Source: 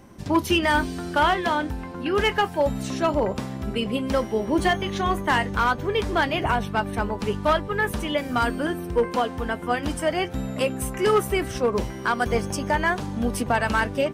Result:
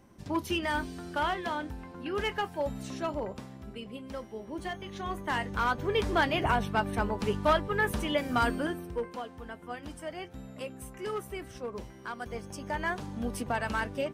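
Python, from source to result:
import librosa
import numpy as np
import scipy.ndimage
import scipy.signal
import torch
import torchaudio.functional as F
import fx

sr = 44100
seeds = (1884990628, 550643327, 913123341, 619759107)

y = fx.gain(x, sr, db=fx.line((2.96, -10.0), (3.86, -16.5), (4.6, -16.5), (5.97, -4.0), (8.54, -4.0), (9.18, -15.5), (12.41, -15.5), (12.88, -9.0)))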